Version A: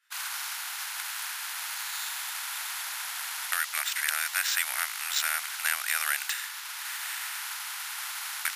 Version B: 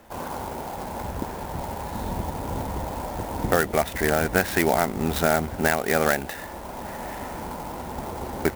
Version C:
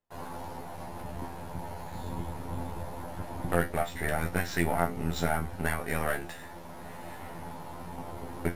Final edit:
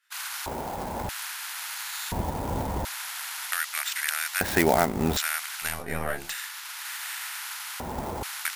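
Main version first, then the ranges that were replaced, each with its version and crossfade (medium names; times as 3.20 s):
A
0.46–1.09 s: from B
2.12–2.85 s: from B
4.41–5.17 s: from B
5.73–6.26 s: from C, crossfade 0.24 s
7.80–8.23 s: from B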